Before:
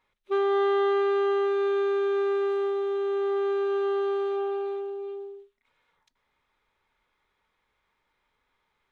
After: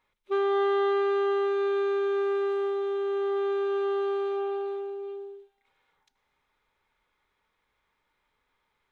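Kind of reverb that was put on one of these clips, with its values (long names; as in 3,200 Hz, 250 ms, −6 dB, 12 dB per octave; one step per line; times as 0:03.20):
feedback delay network reverb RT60 3.4 s, high-frequency decay 0.9×, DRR 14 dB
level −1 dB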